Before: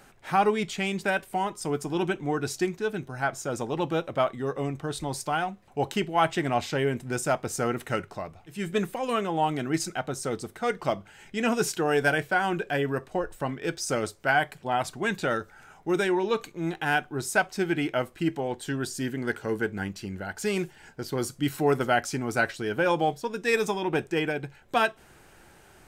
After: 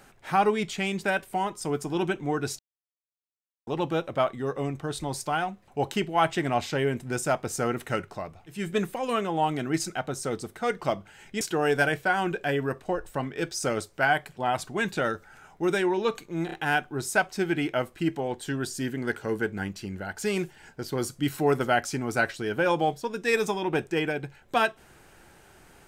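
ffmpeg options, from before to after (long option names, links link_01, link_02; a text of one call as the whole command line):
ffmpeg -i in.wav -filter_complex "[0:a]asplit=6[link_01][link_02][link_03][link_04][link_05][link_06];[link_01]atrim=end=2.59,asetpts=PTS-STARTPTS,afade=type=out:start_time=2.586:duration=0.004:curve=hsin[link_07];[link_02]atrim=start=2.59:end=3.67,asetpts=PTS-STARTPTS,volume=0[link_08];[link_03]atrim=start=3.67:end=11.412,asetpts=PTS-STARTPTS,afade=type=in:duration=0.004:curve=hsin[link_09];[link_04]atrim=start=11.668:end=16.752[link_10];[link_05]atrim=start=16.718:end=16.752[link_11];[link_06]atrim=start=16.718[link_12];[link_07][link_08][link_09]concat=n=3:v=0:a=1[link_13];[link_13][link_10]acrossfade=duration=0.004:curve1=hsin:curve2=hsin[link_14];[link_14][link_11]acrossfade=duration=0.004:curve1=hsin:curve2=hsin[link_15];[link_15][link_12]acrossfade=duration=0.004:curve1=hsin:curve2=hsin" out.wav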